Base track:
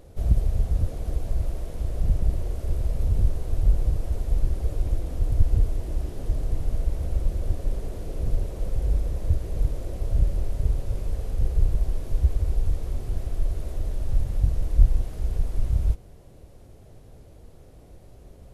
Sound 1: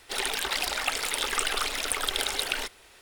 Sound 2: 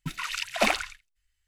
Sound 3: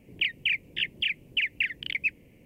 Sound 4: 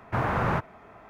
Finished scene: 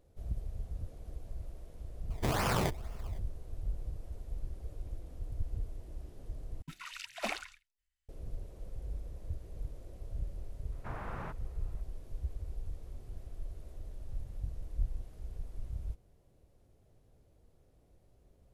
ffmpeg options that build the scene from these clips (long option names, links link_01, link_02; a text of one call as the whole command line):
ffmpeg -i bed.wav -i cue0.wav -i cue1.wav -i cue2.wav -i cue3.wav -filter_complex "[4:a]asplit=2[link_01][link_02];[0:a]volume=-17dB[link_03];[link_01]acrusher=samples=22:mix=1:aa=0.000001:lfo=1:lforange=22:lforate=2.1[link_04];[link_03]asplit=2[link_05][link_06];[link_05]atrim=end=6.624[link_07];[2:a]atrim=end=1.47,asetpts=PTS-STARTPTS,volume=-13dB[link_08];[link_06]atrim=start=8.086[link_09];[link_04]atrim=end=1.09,asetpts=PTS-STARTPTS,volume=-5dB,afade=type=in:duration=0.004:curve=hsin,afade=type=out:start_time=1.086:duration=0.004:curve=hsin,adelay=2100[link_10];[link_02]atrim=end=1.09,asetpts=PTS-STARTPTS,volume=-17dB,afade=type=in:duration=0.004:curve=hsin,afade=type=out:start_time=1.086:duration=0.004:curve=hsin,adelay=10720[link_11];[link_07][link_08]acrossfade=duration=0.004:curve1=hsin:curve2=hsin[link_12];[link_12][link_09]acrossfade=duration=0.004:curve1=hsin:curve2=hsin[link_13];[link_13][link_10][link_11]amix=inputs=3:normalize=0" out.wav